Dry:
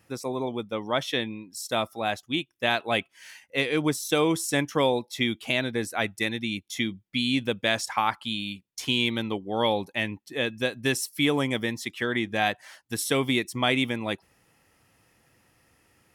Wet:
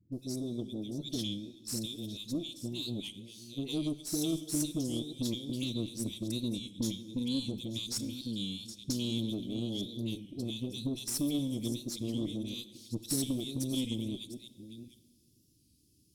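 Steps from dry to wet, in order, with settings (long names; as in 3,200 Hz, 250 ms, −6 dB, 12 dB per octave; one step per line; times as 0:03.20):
delay that plays each chunk backwards 513 ms, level −12.5 dB
elliptic band-stop filter 320–4,000 Hz, stop band 50 dB
downward compressor 6 to 1, threshold −28 dBFS, peak gain reduction 7 dB
all-pass dispersion highs, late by 126 ms, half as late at 990 Hz
harmonic generator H 6 −23 dB, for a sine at −17.5 dBFS
dense smooth reverb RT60 1.8 s, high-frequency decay 0.8×, DRR 14.5 dB
wow of a warped record 33 1/3 rpm, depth 100 cents
level −1.5 dB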